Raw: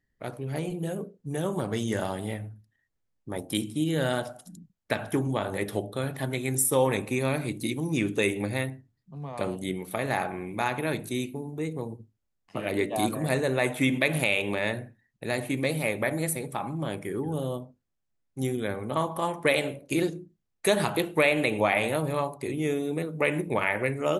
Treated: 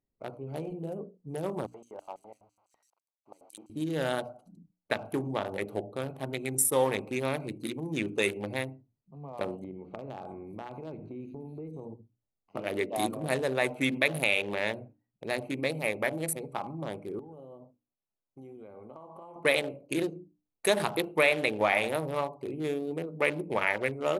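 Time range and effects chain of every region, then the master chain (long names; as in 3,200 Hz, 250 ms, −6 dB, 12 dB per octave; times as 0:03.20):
0:01.66–0:03.70: spike at every zero crossing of −27 dBFS + auto-filter band-pass square 6 Hz 850–7,400 Hz
0:09.64–0:11.85: spectral tilt −2 dB per octave + multiband delay without the direct sound lows, highs 620 ms, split 4,600 Hz + downward compressor 4 to 1, threshold −33 dBFS
0:17.19–0:19.36: low-shelf EQ 250 Hz −6 dB + downward compressor 10 to 1, threshold −38 dBFS
whole clip: adaptive Wiener filter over 25 samples; low-shelf EQ 250 Hz −9.5 dB; mains-hum notches 60/120/180/240/300 Hz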